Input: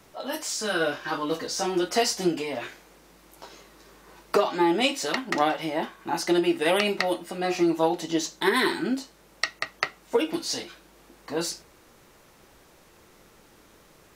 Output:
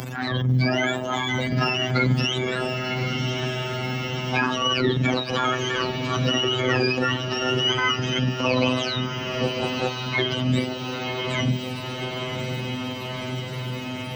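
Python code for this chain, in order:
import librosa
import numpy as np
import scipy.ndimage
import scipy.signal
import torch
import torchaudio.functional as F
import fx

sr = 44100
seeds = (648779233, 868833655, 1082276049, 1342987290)

p1 = fx.octave_mirror(x, sr, pivot_hz=1000.0)
p2 = fx.robotise(p1, sr, hz=127.0)
p3 = fx.transient(p2, sr, attack_db=-10, sustain_db=6)
p4 = p3 + fx.echo_diffused(p3, sr, ms=1055, feedback_pct=59, wet_db=-10.5, dry=0)
p5 = fx.band_squash(p4, sr, depth_pct=70)
y = F.gain(torch.from_numpy(p5), 7.0).numpy()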